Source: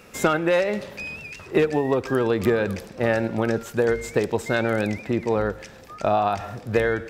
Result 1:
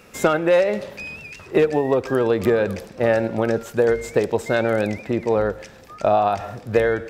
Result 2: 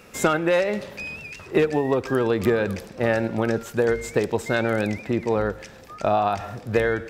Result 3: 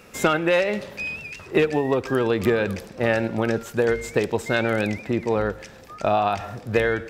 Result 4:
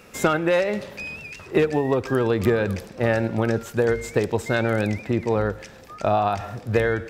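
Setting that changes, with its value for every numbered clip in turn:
dynamic EQ, frequency: 570, 8100, 2800, 100 Hz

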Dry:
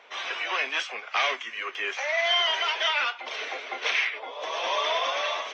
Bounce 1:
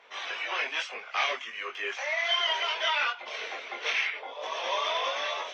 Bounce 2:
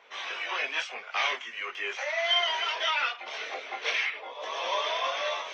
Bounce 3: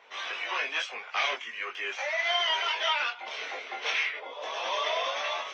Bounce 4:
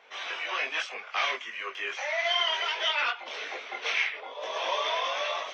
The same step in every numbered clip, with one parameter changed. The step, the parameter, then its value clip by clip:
chorus, rate: 1.4, 0.66, 0.32, 2.7 Hz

